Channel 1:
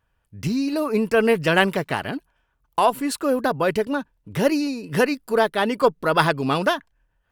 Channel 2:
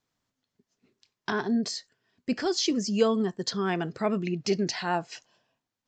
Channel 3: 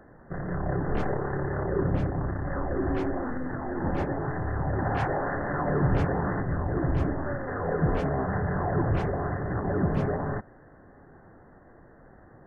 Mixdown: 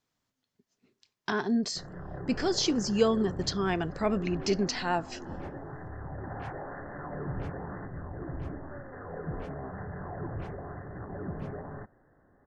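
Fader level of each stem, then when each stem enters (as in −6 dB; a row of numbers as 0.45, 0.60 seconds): muted, −1.0 dB, −11.5 dB; muted, 0.00 s, 1.45 s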